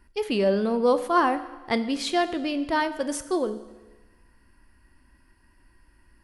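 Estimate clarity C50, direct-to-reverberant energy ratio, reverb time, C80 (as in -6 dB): 13.5 dB, 11.0 dB, 1.2 s, 15.0 dB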